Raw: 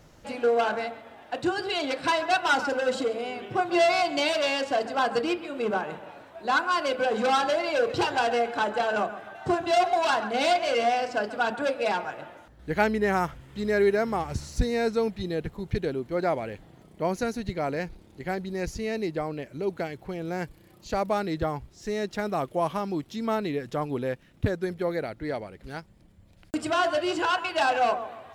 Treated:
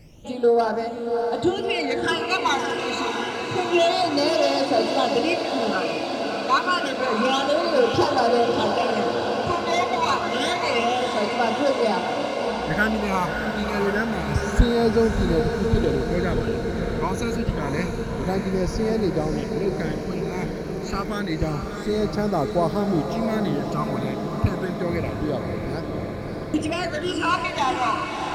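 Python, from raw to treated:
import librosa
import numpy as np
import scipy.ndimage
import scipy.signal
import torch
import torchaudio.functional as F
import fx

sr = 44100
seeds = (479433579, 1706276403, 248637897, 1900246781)

y = fx.phaser_stages(x, sr, stages=12, low_hz=500.0, high_hz=2800.0, hz=0.28, feedback_pct=50)
y = fx.echo_diffused(y, sr, ms=621, feedback_pct=77, wet_db=-5.5)
y = y * 10.0 ** (5.0 / 20.0)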